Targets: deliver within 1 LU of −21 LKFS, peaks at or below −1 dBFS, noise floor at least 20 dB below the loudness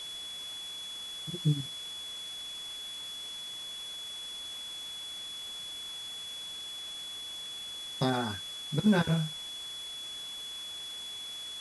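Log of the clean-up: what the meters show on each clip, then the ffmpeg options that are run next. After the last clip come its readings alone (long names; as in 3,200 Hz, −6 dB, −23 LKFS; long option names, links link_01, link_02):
interfering tone 3,400 Hz; level of the tone −39 dBFS; background noise floor −42 dBFS; target noise floor −56 dBFS; integrated loudness −35.5 LKFS; sample peak −15.0 dBFS; target loudness −21.0 LKFS
→ -af "bandreject=frequency=3400:width=30"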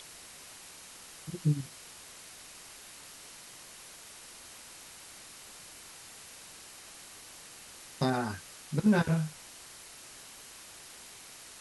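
interfering tone none found; background noise floor −51 dBFS; target noise floor −58 dBFS
→ -af "afftdn=noise_reduction=7:noise_floor=-51"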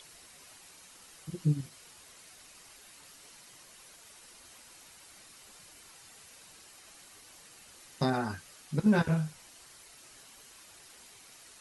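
background noise floor −55 dBFS; integrated loudness −31.5 LKFS; sample peak −15.5 dBFS; target loudness −21.0 LKFS
→ -af "volume=10.5dB"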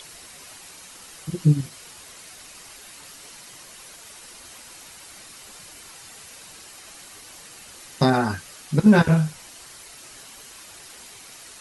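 integrated loudness −21.0 LKFS; sample peak −5.0 dBFS; background noise floor −45 dBFS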